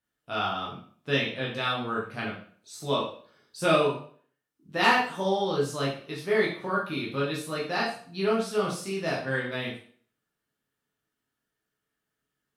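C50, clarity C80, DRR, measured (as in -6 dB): 5.0 dB, 9.5 dB, -5.5 dB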